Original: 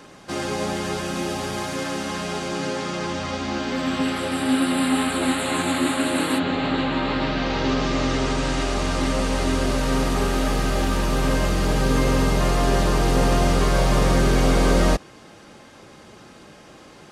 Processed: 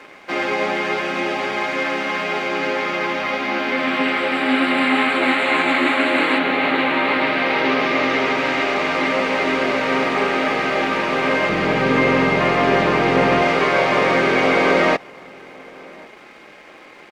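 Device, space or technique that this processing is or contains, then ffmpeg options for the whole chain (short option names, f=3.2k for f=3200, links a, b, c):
pocket radio on a weak battery: -filter_complex "[0:a]asettb=1/sr,asplit=3[a][b][c];[a]atrim=end=11.494[d];[b]atrim=start=11.49:end=13.42,asetpts=PTS-STARTPTS,afade=t=in:d=0.004:c=qsin,afade=t=out:st=1.926:d=0.004:c=qsin,bass=f=250:g=8,treble=f=4k:g=-2[e];[c]atrim=start=13.416[f];[d][e]acrossfade=d=0.004:c1=hsin:c2=qsin[g];[g][f]acrossfade=d=0.004:c1=qsin:c2=hsin,highpass=340,lowpass=3k,aeval=exprs='sgn(val(0))*max(abs(val(0))-0.0015,0)':c=same,equalizer=f=2.2k:t=o:w=0.44:g=10,asplit=2[h][i];[i]adelay=1108,volume=-24dB,highshelf=f=4k:g=-24.9[j];[h][j]amix=inputs=2:normalize=0,volume=6.5dB"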